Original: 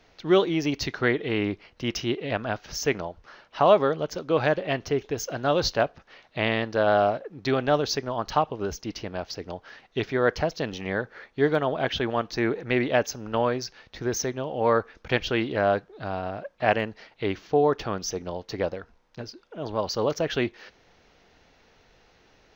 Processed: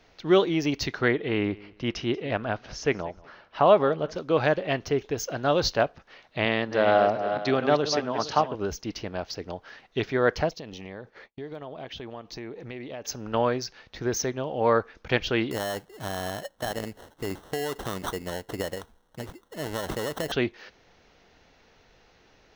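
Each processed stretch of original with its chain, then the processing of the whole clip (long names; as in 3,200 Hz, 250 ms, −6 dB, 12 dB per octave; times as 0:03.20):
0:01.08–0:04.16: Bessel low-pass filter 3,700 Hz + repeating echo 185 ms, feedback 25%, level −22 dB
0:06.45–0:08.55: feedback delay that plays each chunk backwards 232 ms, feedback 42%, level −7.5 dB + band-pass filter 120–7,400 Hz
0:10.49–0:13.05: downward expander −44 dBFS + parametric band 1,500 Hz −7 dB 0.5 octaves + downward compressor 4 to 1, threshold −37 dBFS
0:15.51–0:20.32: downward compressor 12 to 1, threshold −25 dBFS + sample-rate reduction 2,400 Hz
whole clip: no processing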